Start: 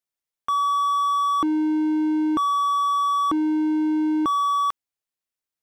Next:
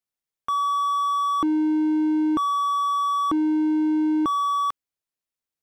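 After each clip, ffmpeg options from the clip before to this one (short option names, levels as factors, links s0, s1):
-af "lowshelf=f=440:g=3.5,volume=0.794"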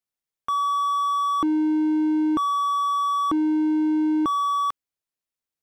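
-af anull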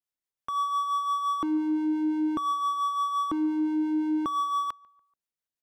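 -filter_complex "[0:a]acrossover=split=480[s0][s1];[s0]aeval=exprs='val(0)*(1-0.5/2+0.5/2*cos(2*PI*5.8*n/s))':c=same[s2];[s1]aeval=exprs='val(0)*(1-0.5/2-0.5/2*cos(2*PI*5.8*n/s))':c=same[s3];[s2][s3]amix=inputs=2:normalize=0,asplit=2[s4][s5];[s5]adelay=144,lowpass=f=1800:p=1,volume=0.0668,asplit=2[s6][s7];[s7]adelay=144,lowpass=f=1800:p=1,volume=0.44,asplit=2[s8][s9];[s9]adelay=144,lowpass=f=1800:p=1,volume=0.44[s10];[s4][s6][s8][s10]amix=inputs=4:normalize=0,volume=0.75"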